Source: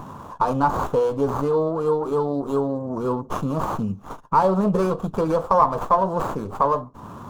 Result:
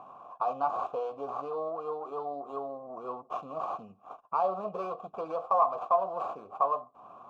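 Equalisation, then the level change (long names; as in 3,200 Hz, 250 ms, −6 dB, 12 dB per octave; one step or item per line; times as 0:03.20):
dynamic equaliser 4,600 Hz, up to +6 dB, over −45 dBFS, Q 0.98
formant filter a
0.0 dB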